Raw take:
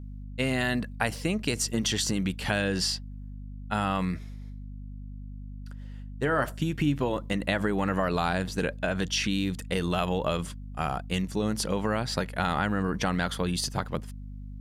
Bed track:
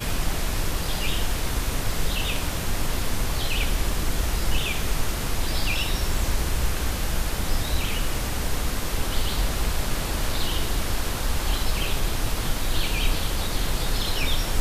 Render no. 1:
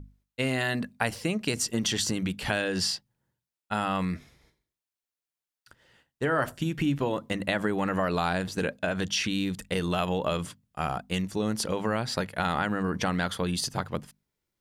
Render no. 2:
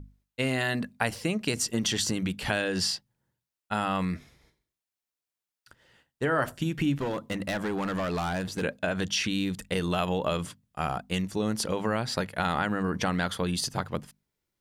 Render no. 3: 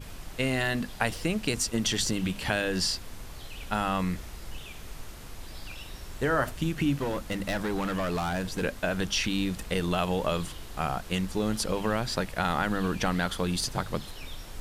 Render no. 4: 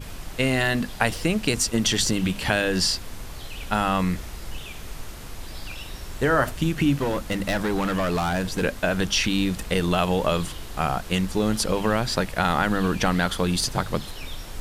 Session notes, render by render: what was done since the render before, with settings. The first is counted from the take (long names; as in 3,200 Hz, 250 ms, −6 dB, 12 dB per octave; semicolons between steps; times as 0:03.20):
mains-hum notches 50/100/150/200/250 Hz
0:07.00–0:08.63: hard clipping −26 dBFS
mix in bed track −17 dB
level +5.5 dB